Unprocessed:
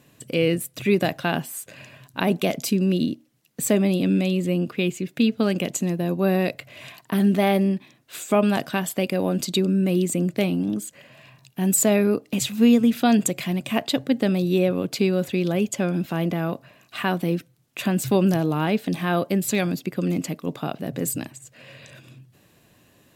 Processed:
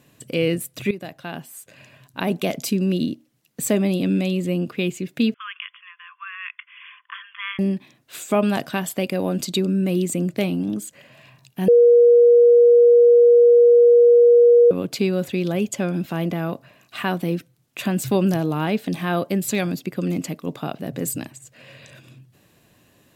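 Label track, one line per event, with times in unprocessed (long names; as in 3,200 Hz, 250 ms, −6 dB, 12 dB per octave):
0.910000	2.610000	fade in, from −15 dB
5.340000	7.590000	linear-phase brick-wall band-pass 990–3,500 Hz
11.680000	14.710000	beep over 477 Hz −8.5 dBFS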